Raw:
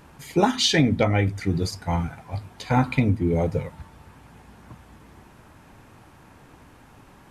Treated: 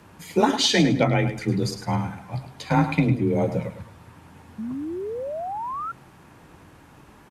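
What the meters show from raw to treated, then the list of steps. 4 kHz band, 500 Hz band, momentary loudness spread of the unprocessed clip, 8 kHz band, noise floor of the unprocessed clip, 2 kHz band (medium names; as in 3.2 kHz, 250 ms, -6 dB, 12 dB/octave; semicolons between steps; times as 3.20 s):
+0.5 dB, +1.5 dB, 14 LU, +0.5 dB, -51 dBFS, +0.5 dB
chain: frequency shift +26 Hz; feedback delay 105 ms, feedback 27%, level -10 dB; painted sound rise, 4.58–5.92 s, 210–1400 Hz -30 dBFS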